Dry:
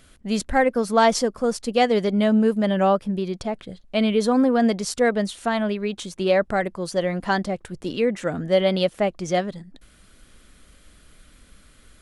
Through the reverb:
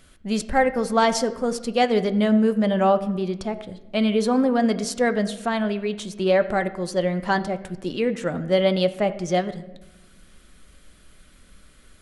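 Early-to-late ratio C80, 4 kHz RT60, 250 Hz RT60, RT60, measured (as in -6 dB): 16.0 dB, 0.70 s, 1.6 s, 1.1 s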